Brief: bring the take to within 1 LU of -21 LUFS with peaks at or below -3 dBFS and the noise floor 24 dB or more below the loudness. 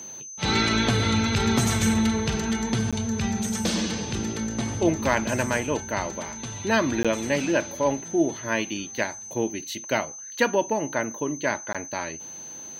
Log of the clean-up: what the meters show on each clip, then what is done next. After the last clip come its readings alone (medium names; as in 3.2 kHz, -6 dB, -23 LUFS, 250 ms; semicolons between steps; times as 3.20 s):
dropouts 3; longest dropout 16 ms; steady tone 6.2 kHz; tone level -37 dBFS; loudness -25.5 LUFS; peak level -7.5 dBFS; loudness target -21.0 LUFS
-> interpolate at 2.91/7.03/11.73 s, 16 ms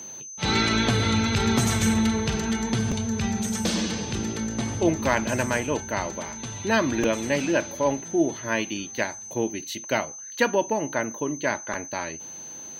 dropouts 0; steady tone 6.2 kHz; tone level -37 dBFS
-> band-stop 6.2 kHz, Q 30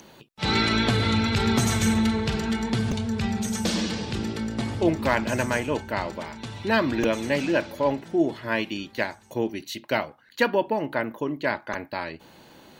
steady tone not found; loudness -25.5 LUFS; peak level -8.0 dBFS; loudness target -21.0 LUFS
-> trim +4.5 dB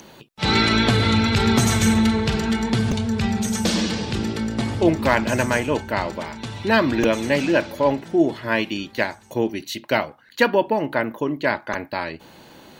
loudness -21.0 LUFS; peak level -3.5 dBFS; noise floor -48 dBFS